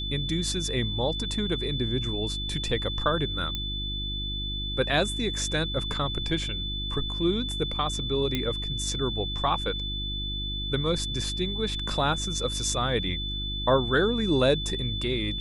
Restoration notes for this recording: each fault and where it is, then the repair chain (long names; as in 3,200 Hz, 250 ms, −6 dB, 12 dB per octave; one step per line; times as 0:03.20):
mains hum 50 Hz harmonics 7 −34 dBFS
whistle 3,500 Hz −32 dBFS
0:03.55: click −16 dBFS
0:08.35: click −13 dBFS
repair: click removal
hum removal 50 Hz, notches 7
notch filter 3,500 Hz, Q 30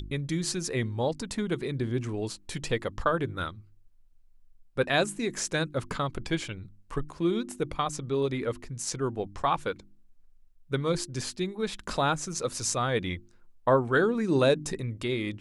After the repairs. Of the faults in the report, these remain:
none of them is left